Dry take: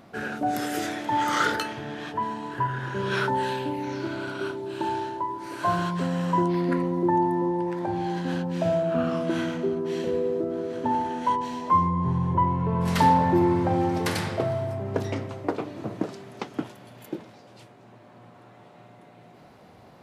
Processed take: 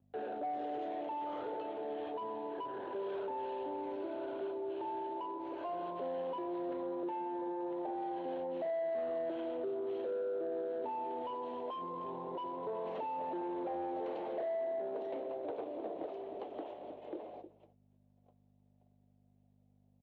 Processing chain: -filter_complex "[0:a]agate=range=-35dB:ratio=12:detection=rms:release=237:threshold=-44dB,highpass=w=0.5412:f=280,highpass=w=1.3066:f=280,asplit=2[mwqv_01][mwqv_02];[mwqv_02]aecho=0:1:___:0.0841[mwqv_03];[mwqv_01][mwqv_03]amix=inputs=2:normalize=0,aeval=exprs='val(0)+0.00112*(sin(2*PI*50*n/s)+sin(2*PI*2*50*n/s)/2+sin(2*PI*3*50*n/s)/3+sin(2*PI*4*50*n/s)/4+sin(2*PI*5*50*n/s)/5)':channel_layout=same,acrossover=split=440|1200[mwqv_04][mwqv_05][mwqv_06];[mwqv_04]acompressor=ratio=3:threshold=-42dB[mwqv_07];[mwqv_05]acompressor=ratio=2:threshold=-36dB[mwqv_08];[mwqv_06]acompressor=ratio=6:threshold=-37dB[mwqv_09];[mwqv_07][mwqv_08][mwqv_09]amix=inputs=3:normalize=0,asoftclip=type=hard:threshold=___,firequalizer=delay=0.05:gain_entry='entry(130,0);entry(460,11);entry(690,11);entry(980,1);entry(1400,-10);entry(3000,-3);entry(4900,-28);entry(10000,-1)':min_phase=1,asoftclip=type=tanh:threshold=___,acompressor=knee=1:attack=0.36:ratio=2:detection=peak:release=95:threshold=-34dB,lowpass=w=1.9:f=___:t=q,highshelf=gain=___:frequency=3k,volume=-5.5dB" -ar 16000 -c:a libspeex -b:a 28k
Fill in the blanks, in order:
309, -30dB, -18.5dB, 4.6k, -4